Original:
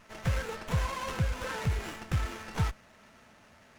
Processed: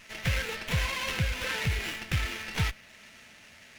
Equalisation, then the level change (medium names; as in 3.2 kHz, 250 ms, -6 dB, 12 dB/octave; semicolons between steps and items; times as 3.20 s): resonant high shelf 1.6 kHz +9 dB, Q 1.5; dynamic bell 7.6 kHz, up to -5 dB, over -52 dBFS, Q 1.1; 0.0 dB